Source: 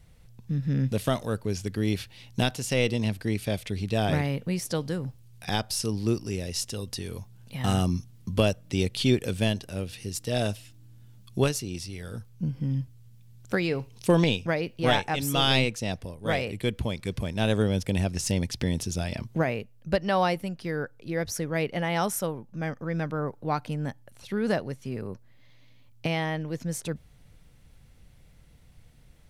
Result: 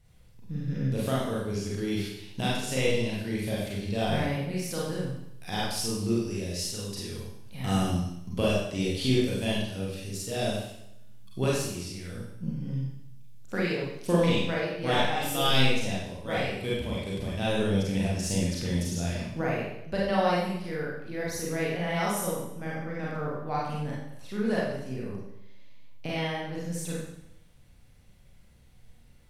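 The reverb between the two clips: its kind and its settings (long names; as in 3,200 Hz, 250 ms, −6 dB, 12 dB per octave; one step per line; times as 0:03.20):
four-comb reverb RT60 0.78 s, combs from 31 ms, DRR −6 dB
level −8 dB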